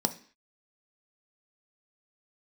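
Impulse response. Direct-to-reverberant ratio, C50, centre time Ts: 8.0 dB, 15.5 dB, 6 ms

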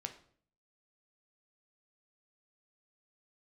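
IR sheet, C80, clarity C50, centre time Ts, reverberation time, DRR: 15.5 dB, 12.0 dB, 10 ms, 0.55 s, 5.0 dB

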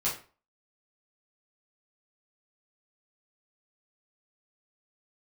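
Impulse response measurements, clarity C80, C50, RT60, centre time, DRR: 13.0 dB, 7.5 dB, 0.40 s, 28 ms, −9.0 dB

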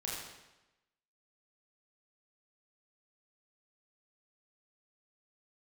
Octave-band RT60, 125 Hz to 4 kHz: 1.0, 1.0, 1.0, 1.0, 0.95, 0.90 seconds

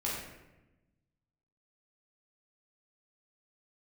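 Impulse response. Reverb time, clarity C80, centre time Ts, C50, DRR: 1.0 s, 3.5 dB, 65 ms, 0.5 dB, −6.0 dB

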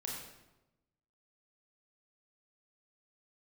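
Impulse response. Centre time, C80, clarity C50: 60 ms, 3.5 dB, 1.5 dB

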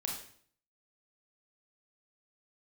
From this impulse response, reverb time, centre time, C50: 0.55 s, 37 ms, 4.0 dB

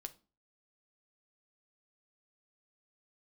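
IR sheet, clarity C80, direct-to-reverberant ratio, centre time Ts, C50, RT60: 25.0 dB, 7.5 dB, 3 ms, 18.5 dB, 0.35 s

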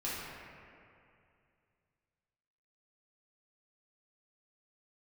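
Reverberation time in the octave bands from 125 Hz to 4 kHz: 3.1, 2.6, 2.5, 2.4, 2.3, 1.6 seconds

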